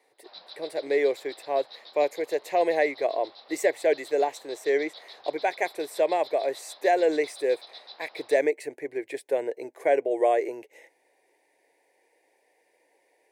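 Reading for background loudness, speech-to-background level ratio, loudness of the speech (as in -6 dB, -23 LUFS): -46.0 LUFS, 19.0 dB, -27.0 LUFS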